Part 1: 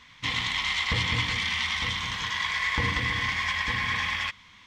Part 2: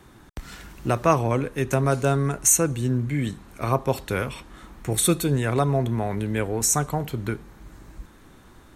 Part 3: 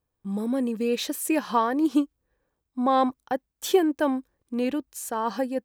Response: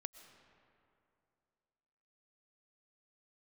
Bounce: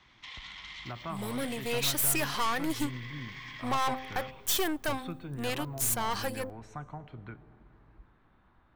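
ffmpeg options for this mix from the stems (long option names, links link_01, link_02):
-filter_complex "[0:a]alimiter=limit=-23.5dB:level=0:latency=1:release=151,highshelf=frequency=6100:gain=11.5,volume=-11.5dB[link_01];[1:a]lowpass=4100,tiltshelf=frequency=1100:gain=7.5,volume=-12dB,asplit=2[link_02][link_03];[link_03]volume=-10.5dB[link_04];[2:a]tiltshelf=frequency=710:gain=-9,bandreject=frequency=261.1:width_type=h:width=4,bandreject=frequency=522.2:width_type=h:width=4,bandreject=frequency=783.3:width_type=h:width=4,aeval=exprs='(tanh(22.4*val(0)+0.65)-tanh(0.65))/22.4':channel_layout=same,adelay=850,volume=0dB,asplit=2[link_05][link_06];[link_06]volume=-21dB[link_07];[link_01][link_02]amix=inputs=2:normalize=0,acrossover=split=550 5500:gain=0.126 1 0.0891[link_08][link_09][link_10];[link_08][link_09][link_10]amix=inputs=3:normalize=0,acompressor=threshold=-42dB:ratio=2,volume=0dB[link_11];[3:a]atrim=start_sample=2205[link_12];[link_04][link_07]amix=inputs=2:normalize=0[link_13];[link_13][link_12]afir=irnorm=-1:irlink=0[link_14];[link_05][link_11][link_14]amix=inputs=3:normalize=0,highshelf=frequency=12000:gain=8"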